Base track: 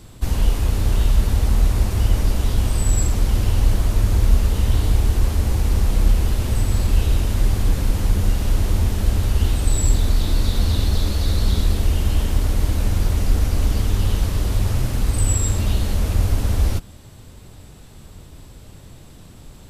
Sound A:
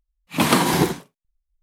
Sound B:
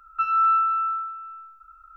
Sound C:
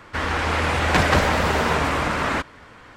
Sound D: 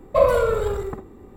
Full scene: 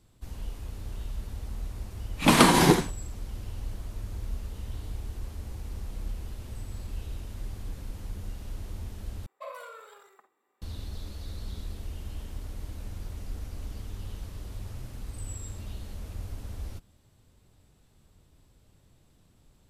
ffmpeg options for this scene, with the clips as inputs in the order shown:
-filter_complex "[0:a]volume=0.106[s0];[1:a]lowpass=f=12000:w=0.5412,lowpass=f=12000:w=1.3066[s1];[4:a]highpass=1100[s2];[s0]asplit=2[s3][s4];[s3]atrim=end=9.264[s5];[s2]atrim=end=1.36,asetpts=PTS-STARTPTS,volume=0.168[s6];[s4]atrim=start=10.616[s7];[s1]atrim=end=1.62,asetpts=PTS-STARTPTS,volume=0.944,afade=t=in:d=0.004:c=hsin,afade=t=out:st=1.616:d=0.004:c=hsin,adelay=1880[s8];[s5][s6]acrossfade=d=0.004:c1=hsin:c2=hsin[s9];[s9][s7]acrossfade=d=0.004:c1=hsin:c2=hsin[s10];[s10][s8]amix=inputs=2:normalize=0"

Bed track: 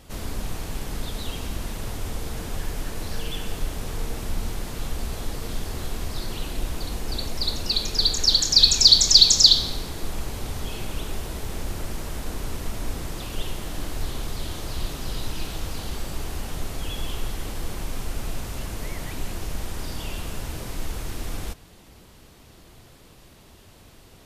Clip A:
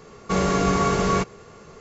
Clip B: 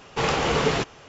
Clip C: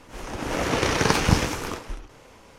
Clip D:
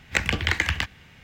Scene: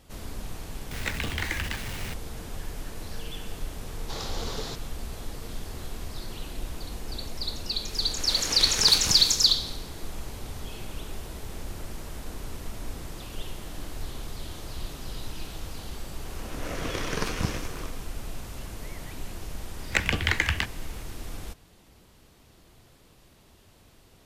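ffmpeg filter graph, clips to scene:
-filter_complex "[4:a]asplit=2[s0][s1];[3:a]asplit=2[s2][s3];[0:a]volume=0.473[s4];[s0]aeval=exprs='val(0)+0.5*0.0794*sgn(val(0))':c=same[s5];[2:a]highshelf=f=3200:t=q:w=3:g=6.5[s6];[s2]crystalizer=i=7:c=0[s7];[s3]bandreject=f=860:w=6.2[s8];[s5]atrim=end=1.23,asetpts=PTS-STARTPTS,volume=0.299,afade=t=in:d=0.004:c=hsin,afade=t=out:st=1.226:d=0.004:c=hsin,adelay=910[s9];[s6]atrim=end=1.08,asetpts=PTS-STARTPTS,volume=0.178,afade=t=in:d=0.004:c=hsin,afade=t=out:st=1.076:d=0.004:c=hsin,adelay=3920[s10];[s7]atrim=end=2.58,asetpts=PTS-STARTPTS,volume=0.178,afade=t=in:d=0.004:c=hsin,afade=t=out:st=2.576:d=0.004:c=hsin,adelay=343098S[s11];[s8]atrim=end=2.58,asetpts=PTS-STARTPTS,volume=0.335,afade=t=in:d=0.004:c=hsin,afade=t=out:st=2.576:d=0.004:c=hsin,adelay=16120[s12];[s1]atrim=end=1.23,asetpts=PTS-STARTPTS,volume=0.841,afade=t=in:d=0.004:c=hsin,afade=t=out:st=1.226:d=0.004:c=hsin,adelay=19800[s13];[s4][s9][s10][s11][s12][s13]amix=inputs=6:normalize=0"

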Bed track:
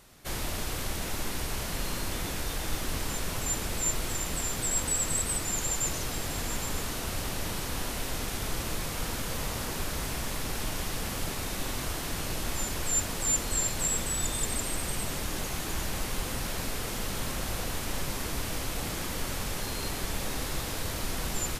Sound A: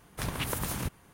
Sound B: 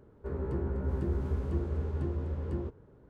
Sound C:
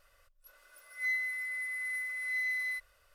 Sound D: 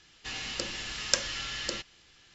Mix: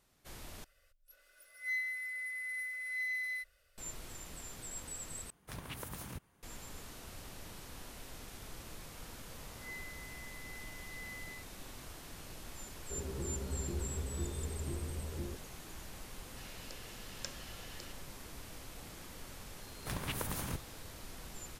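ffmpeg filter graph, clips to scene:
-filter_complex "[3:a]asplit=2[s0][s1];[1:a]asplit=2[s2][s3];[0:a]volume=0.158[s4];[s0]equalizer=f=1000:w=2.5:g=-14.5[s5];[s4]asplit=3[s6][s7][s8];[s6]atrim=end=0.644[s9];[s5]atrim=end=3.14,asetpts=PTS-STARTPTS,volume=0.75[s10];[s7]atrim=start=3.776:end=5.304[s11];[s2]atrim=end=1.13,asetpts=PTS-STARTPTS,volume=0.251[s12];[s8]atrim=start=6.426[s13];[s1]atrim=end=3.14,asetpts=PTS-STARTPTS,volume=0.168,afade=t=in:d=0.004:c=hsin,afade=t=out:st=3.136:d=0.004:c=hsin,adelay=8630[s14];[2:a]atrim=end=3.09,asetpts=PTS-STARTPTS,volume=0.422,afade=t=in:d=0.004:c=hsin,afade=t=out:st=3.086:d=0.004:c=hsin,adelay=12660[s15];[4:a]atrim=end=2.34,asetpts=PTS-STARTPTS,volume=0.126,afade=t=in:d=0.004:c=hsin,afade=t=out:st=2.336:d=0.004:c=hsin,adelay=16110[s16];[s3]atrim=end=1.13,asetpts=PTS-STARTPTS,volume=0.501,afade=t=in:d=0.004:c=hsin,afade=t=out:st=1.126:d=0.004:c=hsin,adelay=19680[s17];[s9][s10]acrossfade=d=0.004:c1=hsin:c2=hsin[s18];[s18][s11]acrossfade=d=0.004:c1=hsin:c2=hsin[s19];[s19][s12]acrossfade=d=0.004:c1=hsin:c2=hsin[s20];[s20][s13]acrossfade=d=0.004:c1=hsin:c2=hsin[s21];[s21][s14][s15][s16][s17]amix=inputs=5:normalize=0"

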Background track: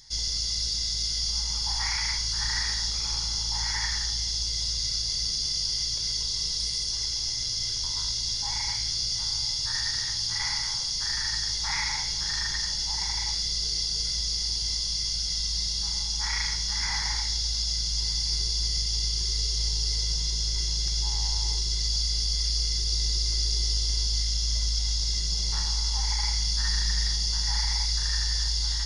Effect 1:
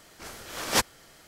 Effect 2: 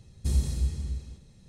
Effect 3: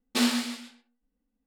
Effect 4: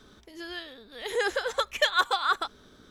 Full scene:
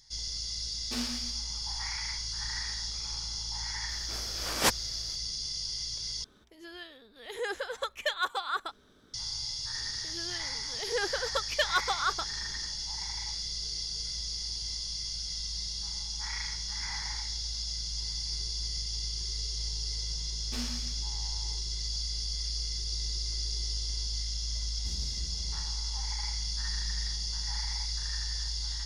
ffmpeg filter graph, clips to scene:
-filter_complex "[3:a]asplit=2[s0][s1];[4:a]asplit=2[s2][s3];[0:a]volume=0.422[s4];[2:a]asoftclip=type=hard:threshold=0.0841[s5];[s4]asplit=2[s6][s7];[s6]atrim=end=6.244[s8];[s2]atrim=end=2.9,asetpts=PTS-STARTPTS,volume=0.447[s9];[s7]atrim=start=9.136[s10];[s0]atrim=end=1.46,asetpts=PTS-STARTPTS,volume=0.251,afade=t=in:d=0.004:c=hsin,afade=t=out:st=1.456:d=0.004:c=hsin,adelay=760[s11];[1:a]atrim=end=1.27,asetpts=PTS-STARTPTS,volume=0.794,afade=t=in:d=0.004:c=hsin,afade=t=out:st=1.266:d=0.004:c=hsin,adelay=171549S[s12];[s3]atrim=end=2.9,asetpts=PTS-STARTPTS,volume=0.596,afade=t=in:d=0.004:c=hsin,afade=t=out:st=2.896:d=0.004:c=hsin,adelay=9770[s13];[s1]atrim=end=1.46,asetpts=PTS-STARTPTS,volume=0.168,afade=t=in:d=0.004:c=hsin,afade=t=out:st=1.456:d=0.004:c=hsin,adelay=20370[s14];[s5]atrim=end=1.48,asetpts=PTS-STARTPTS,volume=0.2,afade=t=in:d=0.004:c=hsin,afade=t=out:st=1.476:d=0.004:c=hsin,adelay=24600[s15];[s8][s9]acrossfade=d=0.004:c1=hsin:c2=hsin[s16];[s16][s10]acrossfade=d=0.004:c1=hsin:c2=hsin[s17];[s17][s11][s12][s13][s14][s15]amix=inputs=6:normalize=0"

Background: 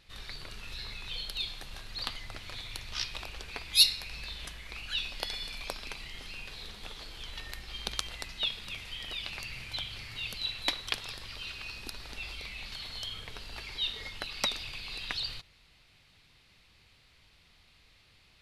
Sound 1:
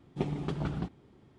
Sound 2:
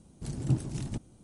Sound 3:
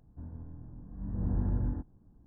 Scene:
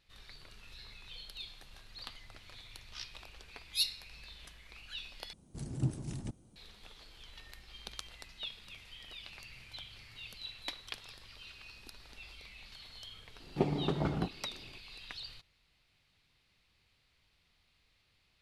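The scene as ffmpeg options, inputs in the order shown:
-filter_complex "[0:a]volume=0.299[s0];[1:a]equalizer=f=590:t=o:w=2.4:g=7.5[s1];[s0]asplit=2[s2][s3];[s2]atrim=end=5.334[s4];[2:a]atrim=end=1.23,asetpts=PTS-STARTPTS,volume=0.531[s5];[s3]atrim=start=6.556[s6];[s1]atrim=end=1.38,asetpts=PTS-STARTPTS,volume=0.75,afade=t=in:d=0.004:c=hsin,afade=t=out:st=1.376:d=0.004:c=hsin,adelay=13400[s7];[s4][s5]acrossfade=d=0.004:c1=hsin:c2=hsin[s8];[s8][s6]acrossfade=d=0.004:c1=hsin:c2=hsin[s9];[s9][s7]amix=inputs=2:normalize=0"

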